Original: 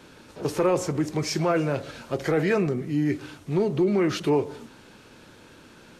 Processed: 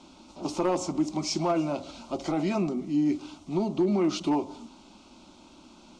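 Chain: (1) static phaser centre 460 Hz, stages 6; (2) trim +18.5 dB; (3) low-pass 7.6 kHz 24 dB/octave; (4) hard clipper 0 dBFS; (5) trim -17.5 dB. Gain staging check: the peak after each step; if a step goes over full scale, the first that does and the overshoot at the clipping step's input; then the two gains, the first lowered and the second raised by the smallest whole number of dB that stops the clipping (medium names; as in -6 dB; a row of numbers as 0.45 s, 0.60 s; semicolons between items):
-14.5 dBFS, +4.0 dBFS, +4.0 dBFS, 0.0 dBFS, -17.5 dBFS; step 2, 4.0 dB; step 2 +14.5 dB, step 5 -13.5 dB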